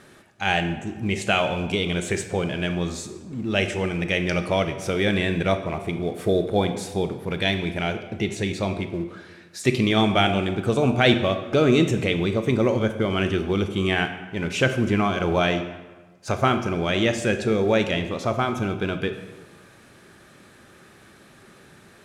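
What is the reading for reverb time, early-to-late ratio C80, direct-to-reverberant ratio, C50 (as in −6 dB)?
1.3 s, 11.5 dB, 8.0 dB, 9.5 dB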